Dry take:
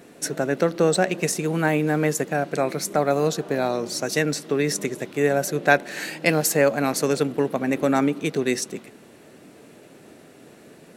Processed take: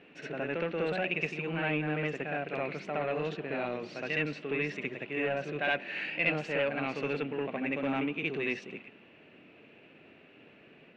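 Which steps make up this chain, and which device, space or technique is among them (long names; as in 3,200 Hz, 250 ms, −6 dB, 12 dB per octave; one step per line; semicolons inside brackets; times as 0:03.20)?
backwards echo 66 ms −4 dB
overdriven synthesiser ladder filter (soft clipping −13 dBFS, distortion −15 dB; transistor ladder low-pass 2,900 Hz, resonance 70%)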